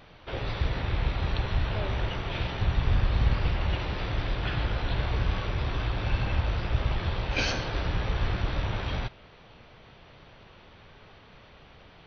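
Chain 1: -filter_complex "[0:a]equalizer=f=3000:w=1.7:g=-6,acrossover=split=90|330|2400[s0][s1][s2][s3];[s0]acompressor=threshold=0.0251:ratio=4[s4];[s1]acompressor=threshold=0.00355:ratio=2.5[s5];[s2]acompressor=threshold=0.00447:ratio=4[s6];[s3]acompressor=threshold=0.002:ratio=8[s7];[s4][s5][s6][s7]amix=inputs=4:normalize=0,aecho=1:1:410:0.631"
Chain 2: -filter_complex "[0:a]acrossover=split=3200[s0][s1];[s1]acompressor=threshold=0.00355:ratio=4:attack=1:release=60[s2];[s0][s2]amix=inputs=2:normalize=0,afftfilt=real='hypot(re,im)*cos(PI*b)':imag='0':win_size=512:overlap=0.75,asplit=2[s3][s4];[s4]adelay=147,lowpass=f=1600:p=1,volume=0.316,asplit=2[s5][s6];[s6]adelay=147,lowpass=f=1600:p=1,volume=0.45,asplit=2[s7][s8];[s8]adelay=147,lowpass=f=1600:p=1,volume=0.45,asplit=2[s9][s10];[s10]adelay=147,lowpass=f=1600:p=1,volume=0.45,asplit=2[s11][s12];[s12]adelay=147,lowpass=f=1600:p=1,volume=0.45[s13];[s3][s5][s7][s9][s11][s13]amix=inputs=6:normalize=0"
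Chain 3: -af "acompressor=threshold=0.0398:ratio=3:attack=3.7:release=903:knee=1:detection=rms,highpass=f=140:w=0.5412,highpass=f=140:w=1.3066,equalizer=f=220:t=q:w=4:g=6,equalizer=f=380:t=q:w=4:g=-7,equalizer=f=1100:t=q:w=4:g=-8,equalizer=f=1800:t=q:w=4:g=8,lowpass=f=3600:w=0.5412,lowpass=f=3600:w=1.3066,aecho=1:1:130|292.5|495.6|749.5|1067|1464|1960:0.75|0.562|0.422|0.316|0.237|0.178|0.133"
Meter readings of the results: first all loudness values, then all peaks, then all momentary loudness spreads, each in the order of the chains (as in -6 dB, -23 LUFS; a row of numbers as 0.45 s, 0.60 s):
-36.5 LUFS, -38.0 LUFS, -36.0 LUFS; -20.5 dBFS, -14.5 dBFS, -20.0 dBFS; 17 LU, 20 LU, 14 LU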